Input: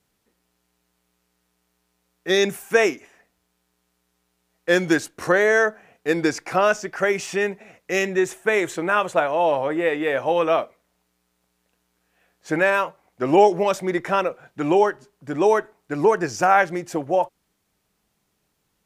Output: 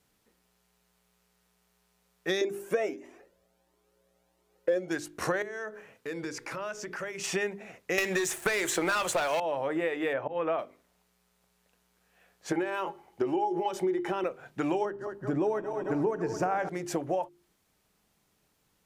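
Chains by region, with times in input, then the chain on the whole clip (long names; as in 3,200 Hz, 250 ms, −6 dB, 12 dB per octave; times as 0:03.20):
0:02.41–0:04.91: hollow resonant body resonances 360/540 Hz, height 16 dB, ringing for 25 ms + flanger whose copies keep moving one way rising 1.5 Hz
0:05.42–0:07.24: mains-hum notches 60/120/180/240/300/360/420/480 Hz + downward compressor 4 to 1, threshold −35 dBFS + Butterworth band-reject 730 Hz, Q 5.6
0:07.98–0:09.40: spectral tilt +2.5 dB per octave + leveller curve on the samples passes 3 + multiband upward and downward compressor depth 100%
0:10.13–0:10.59: low-pass filter 2,200 Hz + volume swells 269 ms
0:12.52–0:14.24: downward compressor 4 to 1, threshold −23 dBFS + notch filter 7,400 Hz, Q 30 + hollow resonant body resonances 360/830/3,000 Hz, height 17 dB, ringing for 90 ms
0:14.85–0:16.69: feedback delay that plays each chunk backwards 110 ms, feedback 79%, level −13.5 dB + tilt shelving filter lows +6.5 dB, about 900 Hz
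whole clip: mains-hum notches 50/100/150/200/250/300/350/400 Hz; downward compressor 6 to 1, threshold −27 dBFS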